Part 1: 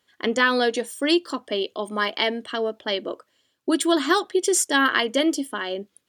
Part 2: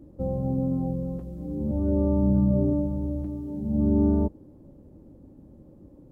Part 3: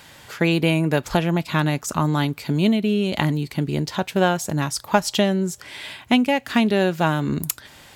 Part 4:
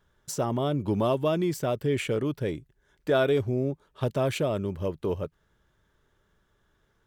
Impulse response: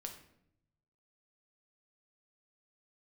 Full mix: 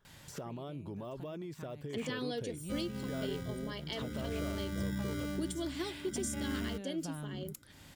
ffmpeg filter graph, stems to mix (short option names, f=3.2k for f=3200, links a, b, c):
-filter_complex "[0:a]equalizer=f=1.3k:t=o:w=2:g=-14,adelay=1700,volume=-12dB[a];[1:a]acrusher=samples=25:mix=1:aa=0.000001,adelay=2500,volume=-13.5dB[b];[2:a]bass=f=250:g=9,treble=f=4k:g=3,acompressor=threshold=-19dB:ratio=2,adelay=50,volume=-12dB[c];[3:a]deesser=1,alimiter=limit=-23.5dB:level=0:latency=1,volume=-3.5dB,asplit=2[d][e];[e]apad=whole_len=353143[f];[c][f]sidechaincompress=threshold=-49dB:ratio=5:attack=6.5:release=338[g];[g][d]amix=inputs=2:normalize=0,acompressor=threshold=-40dB:ratio=6,volume=0dB[h];[a][b][h]amix=inputs=3:normalize=0,alimiter=level_in=2.5dB:limit=-24dB:level=0:latency=1:release=378,volume=-2.5dB"